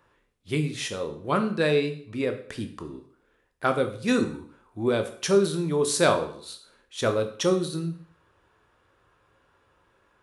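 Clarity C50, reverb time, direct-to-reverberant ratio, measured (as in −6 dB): 11.5 dB, 0.55 s, 6.5 dB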